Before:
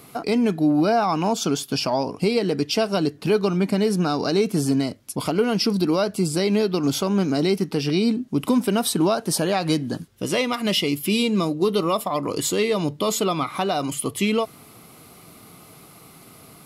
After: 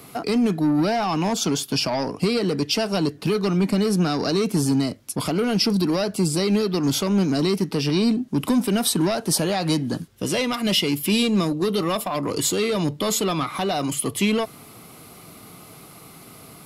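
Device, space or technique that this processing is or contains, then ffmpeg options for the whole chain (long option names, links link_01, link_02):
one-band saturation: -filter_complex "[0:a]acrossover=split=220|3000[link_01][link_02][link_03];[link_02]asoftclip=type=tanh:threshold=-23dB[link_04];[link_01][link_04][link_03]amix=inputs=3:normalize=0,volume=2.5dB"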